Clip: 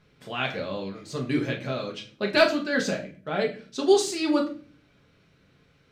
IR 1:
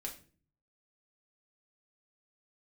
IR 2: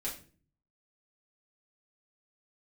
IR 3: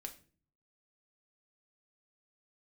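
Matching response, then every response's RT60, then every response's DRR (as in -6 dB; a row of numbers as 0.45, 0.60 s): 1; 0.40, 0.40, 0.40 s; -1.0, -6.5, 3.5 dB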